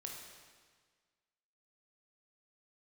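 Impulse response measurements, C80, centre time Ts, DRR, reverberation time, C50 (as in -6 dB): 4.0 dB, 66 ms, -0.5 dB, 1.6 s, 2.5 dB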